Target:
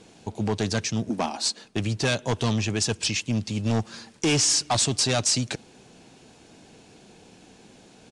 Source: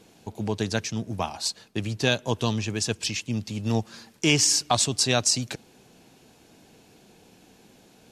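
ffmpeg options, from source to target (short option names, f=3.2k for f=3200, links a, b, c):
-filter_complex "[0:a]asettb=1/sr,asplit=3[a][b][c];[a]atrim=end=1.094[d];[b]atrim=start=1.09:end=1.65,asetpts=PTS-STARTPTS,afade=t=in:d=0.004:c=qsin,afade=t=out:st=0.556:d=0.004:c=qsin,lowshelf=f=170:t=q:w=3:g=-11.5[e];[c]atrim=start=1.646[f];[d][e]acrossfade=d=0.004:c1=hsin:c2=qsin[g];[g][f]acrossfade=d=0.004:c1=qsin:c2=hsin,asoftclip=type=hard:threshold=-22dB,aresample=22050,aresample=44100,volume=3.5dB"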